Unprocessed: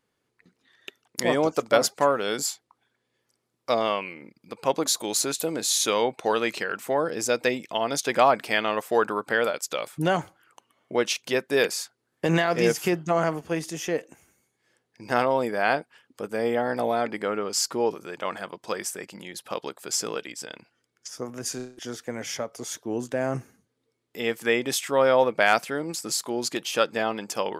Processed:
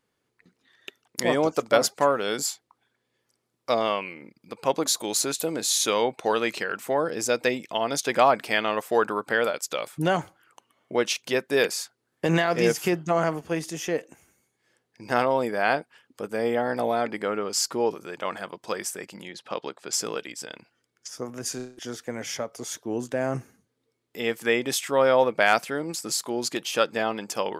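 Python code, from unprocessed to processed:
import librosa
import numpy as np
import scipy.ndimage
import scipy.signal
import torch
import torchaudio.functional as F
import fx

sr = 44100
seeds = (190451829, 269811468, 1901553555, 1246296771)

y = fx.bandpass_edges(x, sr, low_hz=110.0, high_hz=5100.0, at=(19.29, 19.93))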